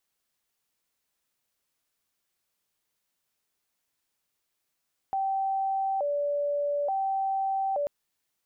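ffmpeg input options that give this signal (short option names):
-f lavfi -i "aevalsrc='0.0562*sin(2*PI*(677*t+99/0.57*(0.5-abs(mod(0.57*t,1)-0.5))))':d=2.74:s=44100"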